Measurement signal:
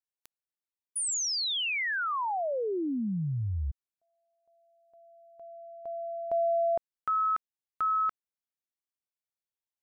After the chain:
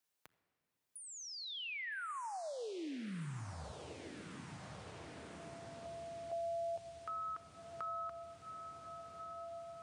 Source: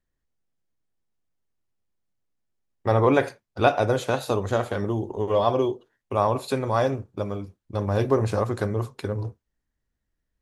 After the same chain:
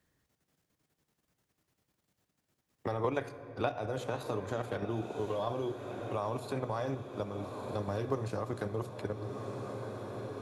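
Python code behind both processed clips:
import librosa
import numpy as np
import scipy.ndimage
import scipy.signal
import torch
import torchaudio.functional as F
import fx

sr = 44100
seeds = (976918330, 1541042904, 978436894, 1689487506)

y = scipy.signal.sosfilt(scipy.signal.butter(2, 76.0, 'highpass', fs=sr, output='sos'), x)
y = fx.level_steps(y, sr, step_db=9)
y = fx.echo_diffused(y, sr, ms=1297, feedback_pct=60, wet_db=-14.0)
y = fx.room_shoebox(y, sr, seeds[0], volume_m3=3300.0, walls='mixed', distance_m=0.49)
y = fx.band_squash(y, sr, depth_pct=70)
y = F.gain(torch.from_numpy(y), -7.5).numpy()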